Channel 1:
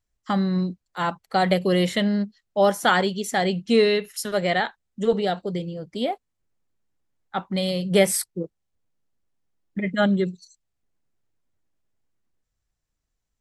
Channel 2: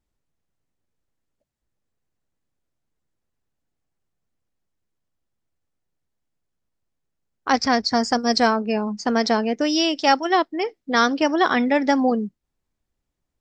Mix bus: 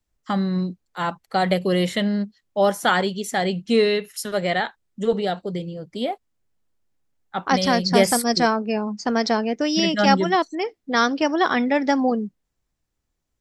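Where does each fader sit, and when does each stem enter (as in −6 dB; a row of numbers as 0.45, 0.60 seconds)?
0.0, −1.0 decibels; 0.00, 0.00 seconds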